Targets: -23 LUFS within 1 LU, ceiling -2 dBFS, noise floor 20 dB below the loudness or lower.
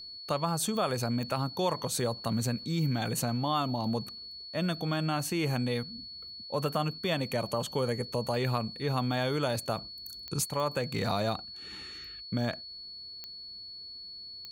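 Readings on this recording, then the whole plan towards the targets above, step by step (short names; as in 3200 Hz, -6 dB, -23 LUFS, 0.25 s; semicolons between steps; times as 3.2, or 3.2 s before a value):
clicks 6; steady tone 4400 Hz; tone level -42 dBFS; loudness -32.5 LUFS; peak -16.0 dBFS; loudness target -23.0 LUFS
-> de-click; notch 4400 Hz, Q 30; gain +9.5 dB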